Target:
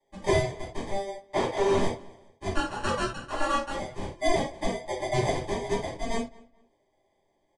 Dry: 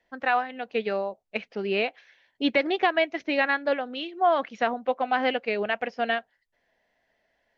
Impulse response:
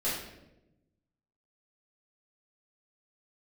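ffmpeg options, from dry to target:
-filter_complex "[0:a]highpass=990,acrusher=samples=32:mix=1:aa=0.000001,asettb=1/sr,asplit=3[link_01][link_02][link_03];[link_01]atrim=end=1.214[link_04];[link_02]atrim=start=1.21:end=1.76,asetpts=PTS-STARTPTS,afade=type=in:duration=0.004:curve=qsin,afade=type=out:start_time=0.546:duration=0.004:curve=qsin,asplit=2[link_05][link_06];[link_06]highpass=frequency=720:poles=1,volume=32dB,asoftclip=type=tanh:threshold=-17dB[link_07];[link_05][link_07]amix=inputs=2:normalize=0,lowpass=frequency=4500:poles=1,volume=-6dB[link_08];[link_03]atrim=start=1.756[link_09];[link_04][link_08]acrossfade=duration=0.004:curve1=hsin:curve2=qsin[link_10];[link_10][link_09]acrossfade=duration=0.004:curve1=qsin:curve2=hsin,asplit=3[link_11][link_12][link_13];[link_11]afade=type=out:start_time=2.52:duration=0.02[link_14];[link_12]aeval=exprs='val(0)*sin(2*PI*850*n/s)':channel_layout=same,afade=type=in:start_time=2.52:duration=0.02,afade=type=out:start_time=3.7:duration=0.02[link_15];[link_13]afade=type=in:start_time=3.7:duration=0.02[link_16];[link_14][link_15][link_16]amix=inputs=3:normalize=0,asplit=2[link_17][link_18];[link_18]adelay=215,lowpass=frequency=3000:poles=1,volume=-22.5dB,asplit=2[link_19][link_20];[link_20]adelay=215,lowpass=frequency=3000:poles=1,volume=0.28[link_21];[link_17][link_19][link_21]amix=inputs=3:normalize=0[link_22];[1:a]atrim=start_sample=2205,afade=type=out:start_time=0.21:duration=0.01,atrim=end_sample=9702,asetrate=70560,aresample=44100[link_23];[link_22][link_23]afir=irnorm=-1:irlink=0,aresample=22050,aresample=44100,volume=-2dB"

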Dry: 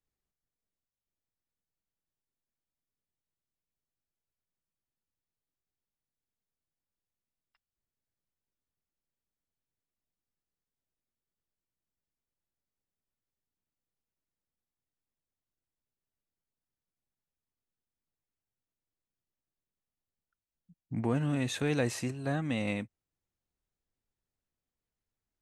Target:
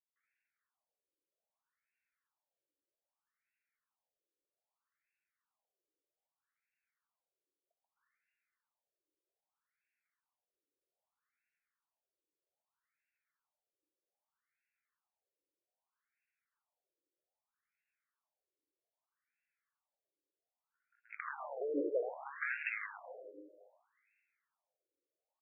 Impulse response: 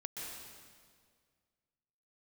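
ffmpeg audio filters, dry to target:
-filter_complex "[0:a]asubboost=boost=2.5:cutoff=240,acrossover=split=1200|2800[link_01][link_02][link_03];[link_01]acompressor=threshold=-33dB:ratio=4[link_04];[link_02]acompressor=threshold=-51dB:ratio=4[link_05];[link_03]acompressor=threshold=-50dB:ratio=4[link_06];[link_04][link_05][link_06]amix=inputs=3:normalize=0,aphaser=in_gain=1:out_gain=1:delay=3.5:decay=0.21:speed=0.18:type=sinusoidal,acrossover=split=390[link_07][link_08];[link_08]adelay=160[link_09];[link_07][link_09]amix=inputs=2:normalize=0,aeval=exprs='(tanh(56.2*val(0)+0.55)-tanh(0.55))/56.2':channel_layout=same,crystalizer=i=4:c=0,asplit=2[link_10][link_11];[1:a]atrim=start_sample=2205,adelay=136[link_12];[link_11][link_12]afir=irnorm=-1:irlink=0,volume=-8dB[link_13];[link_10][link_13]amix=inputs=2:normalize=0,afftfilt=real='re*between(b*sr/1024,410*pow(2000/410,0.5+0.5*sin(2*PI*0.63*pts/sr))/1.41,410*pow(2000/410,0.5+0.5*sin(2*PI*0.63*pts/sr))*1.41)':imag='im*between(b*sr/1024,410*pow(2000/410,0.5+0.5*sin(2*PI*0.63*pts/sr))/1.41,410*pow(2000/410,0.5+0.5*sin(2*PI*0.63*pts/sr))*1.41)':win_size=1024:overlap=0.75,volume=12dB"

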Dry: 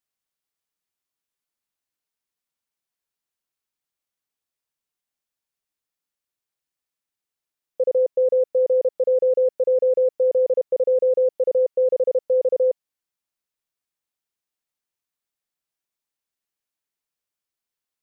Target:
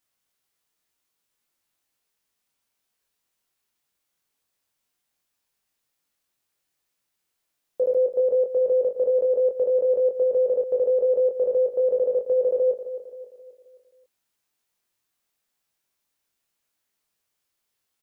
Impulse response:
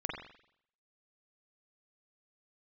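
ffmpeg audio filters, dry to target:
-filter_complex "[0:a]alimiter=limit=-23.5dB:level=0:latency=1:release=55,asplit=2[link_01][link_02];[link_02]adelay=22,volume=-3dB[link_03];[link_01][link_03]amix=inputs=2:normalize=0,aecho=1:1:265|530|795|1060|1325:0.251|0.116|0.0532|0.0244|0.0112,volume=6.5dB"

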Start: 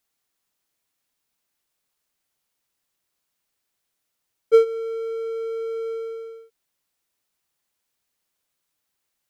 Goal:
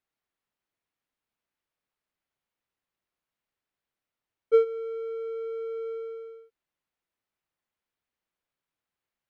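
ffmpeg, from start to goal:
ffmpeg -i in.wav -af "bass=frequency=250:gain=1,treble=frequency=4000:gain=-14,volume=-5.5dB" out.wav

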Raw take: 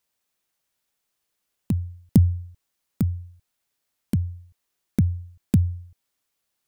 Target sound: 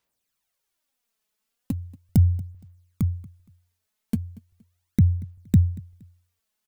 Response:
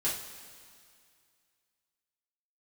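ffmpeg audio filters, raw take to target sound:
-filter_complex "[0:a]aphaser=in_gain=1:out_gain=1:delay=4.7:decay=0.59:speed=0.38:type=sinusoidal,asplit=2[link_01][link_02];[link_02]aecho=0:1:234|468:0.0794|0.023[link_03];[link_01][link_03]amix=inputs=2:normalize=0,volume=-3.5dB"

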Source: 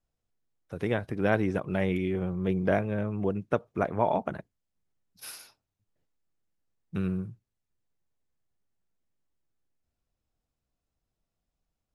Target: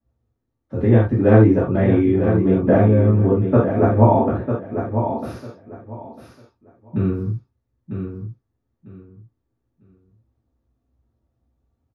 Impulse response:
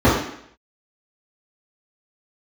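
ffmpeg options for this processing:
-filter_complex "[0:a]aecho=1:1:949|1898|2847:0.422|0.0886|0.0186[link_01];[1:a]atrim=start_sample=2205,afade=type=out:start_time=0.14:duration=0.01,atrim=end_sample=6615[link_02];[link_01][link_02]afir=irnorm=-1:irlink=0,volume=-17.5dB"

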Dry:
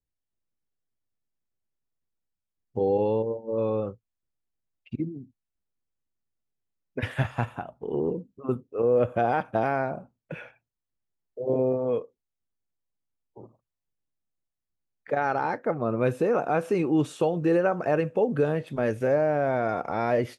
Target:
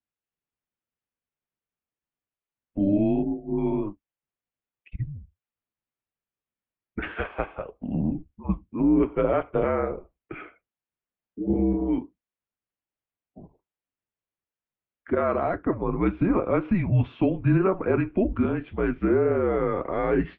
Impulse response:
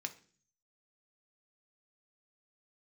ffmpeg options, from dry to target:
-af "flanger=delay=4.2:depth=5.6:regen=-56:speed=1.8:shape=sinusoidal,highpass=frequency=240:width_type=q:width=0.5412,highpass=frequency=240:width_type=q:width=1.307,lowpass=frequency=3300:width_type=q:width=0.5176,lowpass=frequency=3300:width_type=q:width=0.7071,lowpass=frequency=3300:width_type=q:width=1.932,afreqshift=-190,volume=6dB"

